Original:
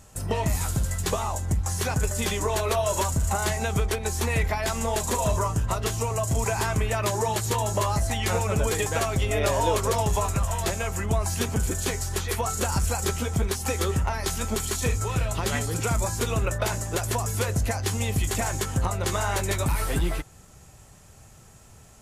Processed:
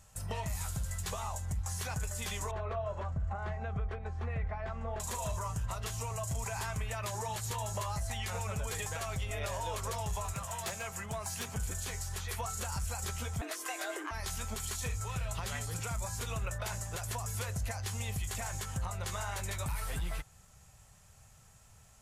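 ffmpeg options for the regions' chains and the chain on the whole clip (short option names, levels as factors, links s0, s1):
-filter_complex "[0:a]asettb=1/sr,asplit=3[s0][s1][s2];[s0]atrim=end=2.514[s3];[s1]atrim=start=2.51:end=5,asetpts=PTS-STARTPTS,afade=t=in:d=0.004:c=qsin,afade=t=out:st=2.486:d=0.004:c=qsin,lowpass=1300,bandreject=f=940:w=6.6[s4];[s2]atrim=start=4.996[s5];[s3][s4]acrossfade=d=0.004:c1=hsin:c2=qsin[s6];[s6][s5]acrossfade=d=0.004:c1=qsin:c2=hsin,asettb=1/sr,asplit=3[s7][s8][s9];[s7]atrim=end=10.334[s10];[s8]atrim=start=10.33:end=11.55,asetpts=PTS-STARTPTS,afade=t=in:d=0.004:c=qsin,afade=t=out:st=1.216:d=0.004:c=qsin,highpass=130,asoftclip=type=hard:threshold=0.0891[s11];[s9]atrim=start=11.546[s12];[s10][s11]acrossfade=d=0.004:c1=hsin:c2=qsin[s13];[s13][s12]acrossfade=d=0.004:c1=qsin:c2=hsin,asettb=1/sr,asplit=3[s14][s15][s16];[s14]atrim=end=13.414[s17];[s15]atrim=start=13.41:end=14.11,asetpts=PTS-STARTPTS,afade=t=in:d=0.004:c=qsin,afade=t=out:st=0.696:d=0.004:c=qsin,equalizer=f=1500:t=o:w=1.4:g=5,afreqshift=250[s18];[s16]atrim=start=14.106[s19];[s17][s18]acrossfade=d=0.004:c1=hsin:c2=qsin[s20];[s20][s19]acrossfade=d=0.004:c1=qsin:c2=hsin,equalizer=f=320:t=o:w=1.1:g=-13,alimiter=limit=0.1:level=0:latency=1:release=85,volume=0.422"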